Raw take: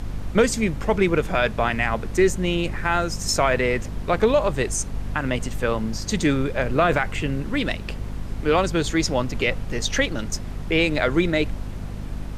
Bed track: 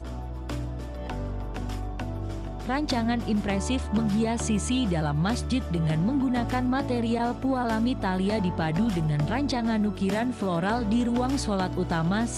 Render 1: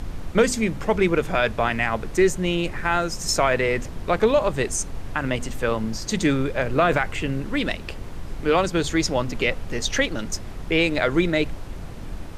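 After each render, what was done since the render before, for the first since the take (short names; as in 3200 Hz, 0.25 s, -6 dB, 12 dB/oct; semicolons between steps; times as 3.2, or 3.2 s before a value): de-hum 50 Hz, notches 5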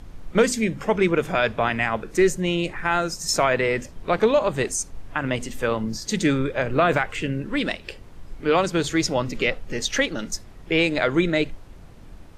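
noise print and reduce 10 dB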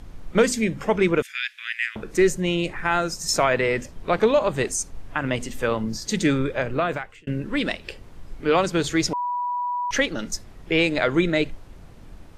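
1.22–1.96 steep high-pass 1700 Hz 48 dB/oct; 6.52–7.27 fade out; 9.13–9.91 bleep 978 Hz -23 dBFS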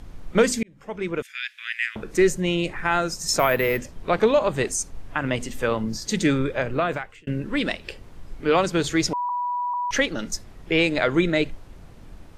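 0.63–1.76 fade in; 3.39–3.79 careless resampling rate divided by 3×, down none, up hold; 9.29–9.74 steep high-pass 630 Hz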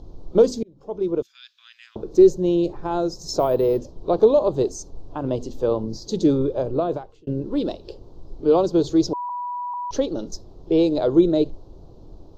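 EQ curve 130 Hz 0 dB, 220 Hz -3 dB, 350 Hz +7 dB, 1000 Hz -3 dB, 2000 Hz -29 dB, 4100 Hz -3 dB, 6500 Hz -8 dB, 9700 Hz -28 dB, 14000 Hz -11 dB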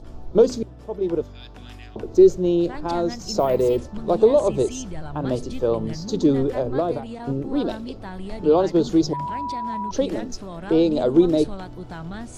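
add bed track -9 dB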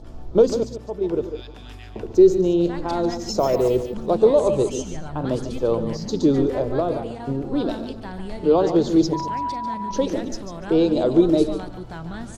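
reverse delay 0.127 s, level -12 dB; on a send: echo 0.145 s -10.5 dB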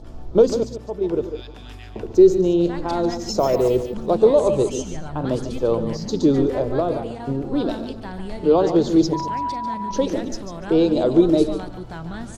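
gain +1 dB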